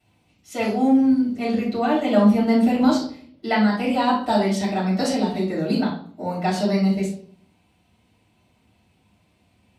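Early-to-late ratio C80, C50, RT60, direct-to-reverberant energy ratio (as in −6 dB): 10.0 dB, 5.0 dB, 0.55 s, −9.0 dB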